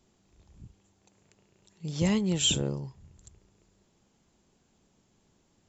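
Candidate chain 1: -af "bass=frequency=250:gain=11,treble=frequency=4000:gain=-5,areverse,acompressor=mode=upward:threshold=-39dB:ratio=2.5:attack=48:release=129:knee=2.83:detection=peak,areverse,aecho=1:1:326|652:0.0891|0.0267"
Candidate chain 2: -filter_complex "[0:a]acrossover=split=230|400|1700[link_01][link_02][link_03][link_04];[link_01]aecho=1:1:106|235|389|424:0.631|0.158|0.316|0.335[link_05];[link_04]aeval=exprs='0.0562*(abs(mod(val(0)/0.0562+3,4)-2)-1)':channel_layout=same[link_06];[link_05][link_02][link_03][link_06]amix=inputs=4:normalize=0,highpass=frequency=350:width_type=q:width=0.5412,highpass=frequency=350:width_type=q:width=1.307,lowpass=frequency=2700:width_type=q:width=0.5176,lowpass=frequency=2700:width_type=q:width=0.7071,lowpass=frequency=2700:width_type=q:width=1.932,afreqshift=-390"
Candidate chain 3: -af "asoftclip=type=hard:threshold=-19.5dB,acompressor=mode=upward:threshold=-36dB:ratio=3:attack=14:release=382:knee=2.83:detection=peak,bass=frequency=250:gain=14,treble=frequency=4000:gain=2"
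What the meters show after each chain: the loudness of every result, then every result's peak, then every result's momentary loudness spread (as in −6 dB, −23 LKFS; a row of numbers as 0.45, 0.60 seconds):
−23.0, −39.0, −22.0 LKFS; −8.5, −23.0, −7.0 dBFS; 23, 20, 23 LU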